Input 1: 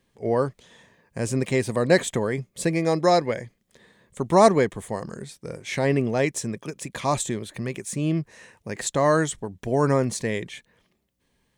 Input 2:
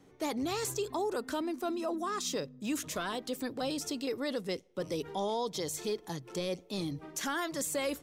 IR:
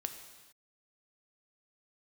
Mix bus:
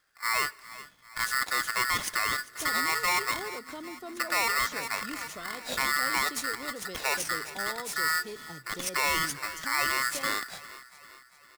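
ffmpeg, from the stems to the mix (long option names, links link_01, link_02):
-filter_complex "[0:a]aeval=exprs='val(0)*sgn(sin(2*PI*1600*n/s))':channel_layout=same,volume=-5dB,asplit=3[link_01][link_02][link_03];[link_02]volume=-14.5dB[link_04];[link_03]volume=-18dB[link_05];[1:a]adelay=2400,volume=-7.5dB[link_06];[2:a]atrim=start_sample=2205[link_07];[link_04][link_07]afir=irnorm=-1:irlink=0[link_08];[link_05]aecho=0:1:398|796|1194|1592|1990|2388|2786|3184:1|0.53|0.281|0.149|0.0789|0.0418|0.0222|0.0117[link_09];[link_01][link_06][link_08][link_09]amix=inputs=4:normalize=0,alimiter=limit=-19dB:level=0:latency=1:release=19"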